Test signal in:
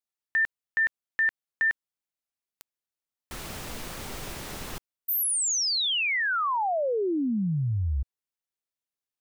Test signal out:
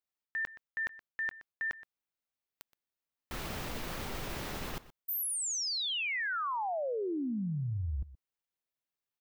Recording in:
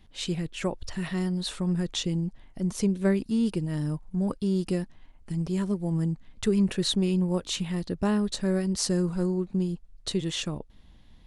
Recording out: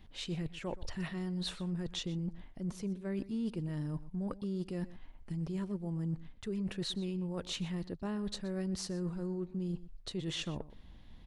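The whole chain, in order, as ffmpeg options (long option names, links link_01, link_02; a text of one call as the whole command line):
ffmpeg -i in.wav -filter_complex "[0:a]equalizer=frequency=8800:width=0.69:gain=-7,areverse,acompressor=threshold=-32dB:ratio=10:attack=3:release=218:knee=1:detection=rms,areverse,asplit=2[link_01][link_02];[link_02]adelay=122.4,volume=-17dB,highshelf=frequency=4000:gain=-2.76[link_03];[link_01][link_03]amix=inputs=2:normalize=0" out.wav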